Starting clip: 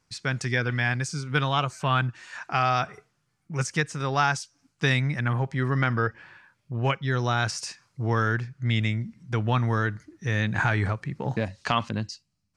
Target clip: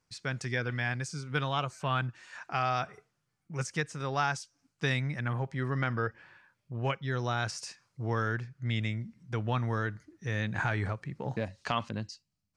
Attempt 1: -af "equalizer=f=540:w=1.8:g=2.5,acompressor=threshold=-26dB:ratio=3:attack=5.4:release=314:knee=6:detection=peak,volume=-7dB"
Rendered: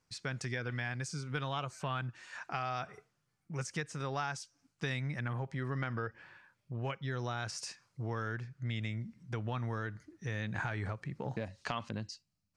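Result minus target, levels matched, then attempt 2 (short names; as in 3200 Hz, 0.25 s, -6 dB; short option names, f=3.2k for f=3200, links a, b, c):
compressor: peak gain reduction +8 dB
-af "equalizer=f=540:w=1.8:g=2.5,volume=-7dB"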